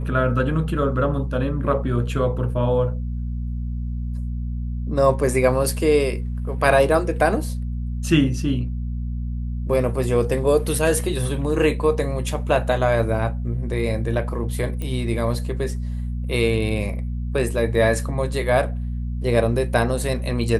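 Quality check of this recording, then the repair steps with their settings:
hum 60 Hz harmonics 4 -26 dBFS
14.82 s: pop -17 dBFS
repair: de-click; de-hum 60 Hz, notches 4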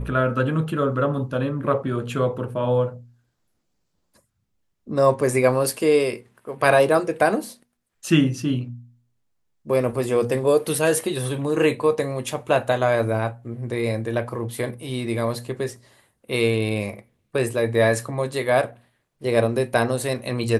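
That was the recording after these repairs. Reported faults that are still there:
nothing left

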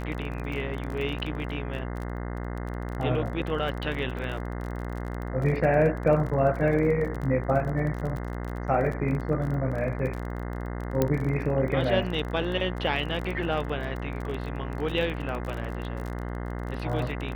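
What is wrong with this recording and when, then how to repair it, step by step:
buzz 60 Hz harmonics 35 -33 dBFS
crackle 29 per s -32 dBFS
11.02 s: pop -10 dBFS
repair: de-click; de-hum 60 Hz, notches 35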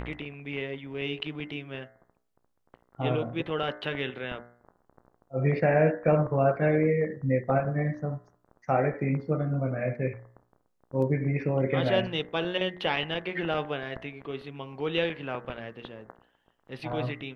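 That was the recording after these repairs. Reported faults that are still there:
11.02 s: pop

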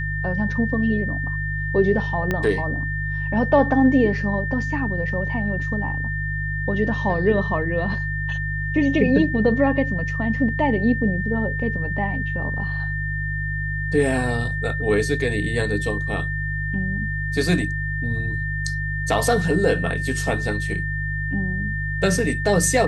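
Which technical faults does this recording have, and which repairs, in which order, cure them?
hum 50 Hz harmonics 3 -27 dBFS
whine 1.8 kHz -27 dBFS
2.31 s: pop -10 dBFS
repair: de-click; de-hum 50 Hz, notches 3; band-stop 1.8 kHz, Q 30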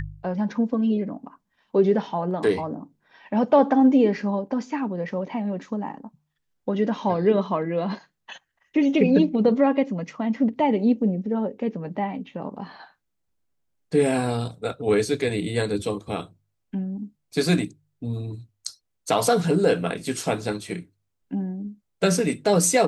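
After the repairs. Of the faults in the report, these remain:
2.31 s: pop

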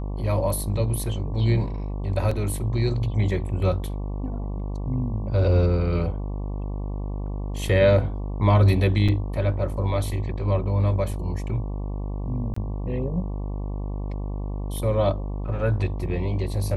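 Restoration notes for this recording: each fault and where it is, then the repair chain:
buzz 50 Hz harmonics 23 -29 dBFS
2.31 s: dropout 3.8 ms
9.08–9.09 s: dropout 5.9 ms
12.54–12.56 s: dropout 24 ms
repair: de-hum 50 Hz, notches 23; interpolate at 2.31 s, 3.8 ms; interpolate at 9.08 s, 5.9 ms; interpolate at 12.54 s, 24 ms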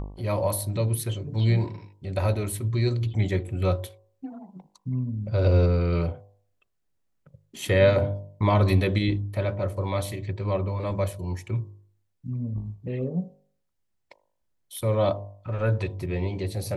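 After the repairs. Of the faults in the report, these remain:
nothing left

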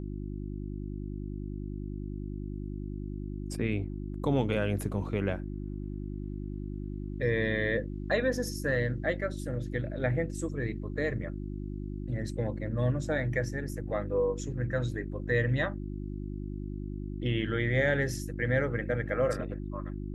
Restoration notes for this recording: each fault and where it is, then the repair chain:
hum 50 Hz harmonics 7 -37 dBFS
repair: de-hum 50 Hz, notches 7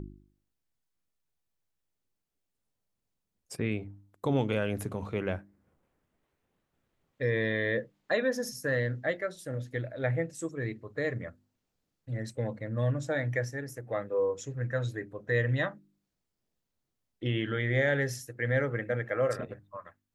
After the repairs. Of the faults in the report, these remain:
nothing left

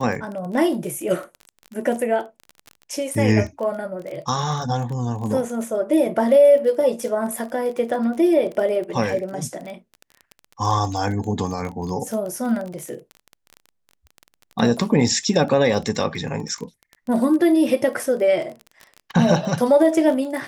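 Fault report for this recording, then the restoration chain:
crackle 26 per s -28 dBFS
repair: de-click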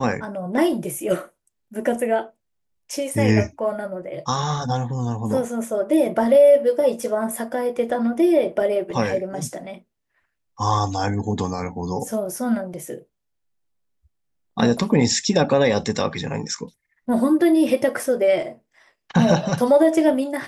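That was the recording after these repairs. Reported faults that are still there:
nothing left

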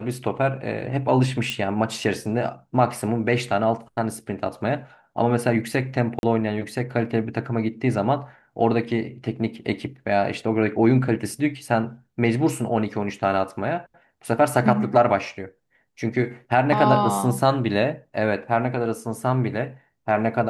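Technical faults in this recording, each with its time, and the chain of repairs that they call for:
1.50 s: pop -12 dBFS
6.19–6.23 s: dropout 41 ms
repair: de-click; interpolate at 6.19 s, 41 ms

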